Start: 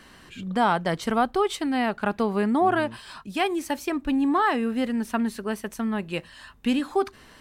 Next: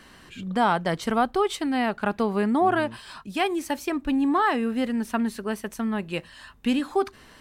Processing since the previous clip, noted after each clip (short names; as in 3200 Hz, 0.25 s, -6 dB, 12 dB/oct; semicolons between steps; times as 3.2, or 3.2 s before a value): nothing audible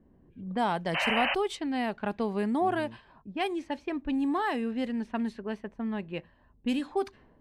painted sound noise, 0.94–1.35, 520–3100 Hz -22 dBFS; low-pass opened by the level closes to 380 Hz, open at -19 dBFS; bell 1300 Hz -7 dB 0.43 oct; gain -5.5 dB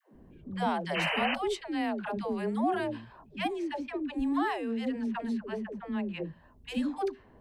compressor 1.5:1, threshold -49 dBFS, peak gain reduction 10 dB; dispersion lows, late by 0.137 s, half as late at 410 Hz; gain +6.5 dB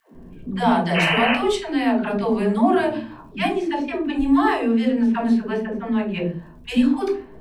crackle 72/s -62 dBFS; shoebox room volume 240 m³, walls furnished, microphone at 1.6 m; gain +8 dB